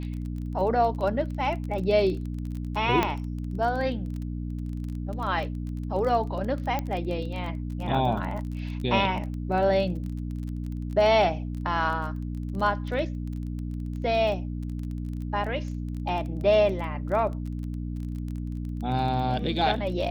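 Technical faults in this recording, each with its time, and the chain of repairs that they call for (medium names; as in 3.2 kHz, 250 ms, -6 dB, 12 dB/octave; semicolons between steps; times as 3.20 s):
crackle 21 per s -33 dBFS
hum 60 Hz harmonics 5 -32 dBFS
3.03 s: pop -10 dBFS
6.79 s: pop -15 dBFS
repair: de-click; de-hum 60 Hz, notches 5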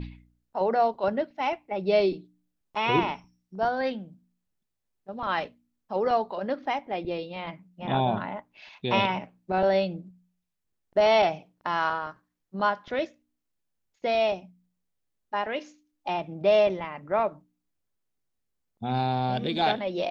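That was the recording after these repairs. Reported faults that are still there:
nothing left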